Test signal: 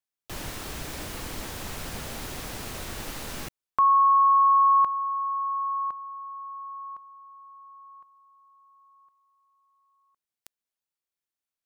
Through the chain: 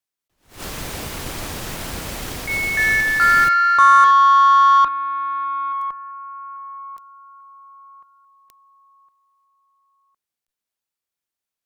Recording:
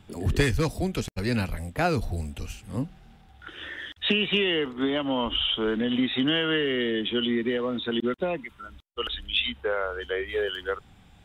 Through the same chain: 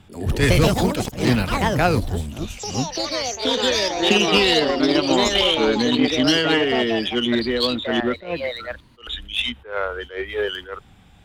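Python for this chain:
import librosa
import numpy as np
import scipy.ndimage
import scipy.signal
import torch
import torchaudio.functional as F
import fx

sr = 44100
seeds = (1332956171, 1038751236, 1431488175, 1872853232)

y = fx.echo_pitch(x, sr, ms=194, semitones=4, count=3, db_per_echo=-3.0)
y = fx.cheby_harmonics(y, sr, harmonics=(3, 7, 8), levels_db=(-29, -31, -38), full_scale_db=-9.5)
y = fx.attack_slew(y, sr, db_per_s=160.0)
y = y * librosa.db_to_amplitude(7.0)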